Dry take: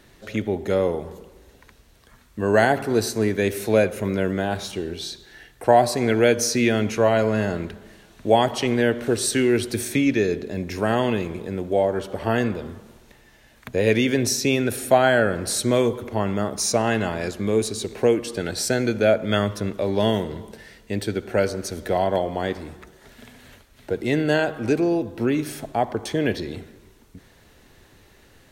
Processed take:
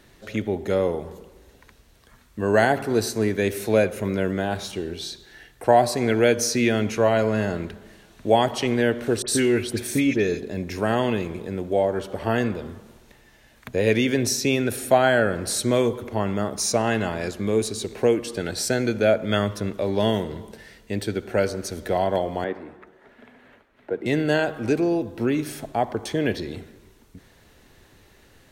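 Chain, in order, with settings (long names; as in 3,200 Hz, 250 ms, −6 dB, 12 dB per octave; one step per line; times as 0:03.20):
0:09.22–0:10.43: all-pass dispersion highs, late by 63 ms, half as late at 2,200 Hz
0:22.44–0:24.06: three-way crossover with the lows and the highs turned down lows −15 dB, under 200 Hz, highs −21 dB, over 2,500 Hz
level −1 dB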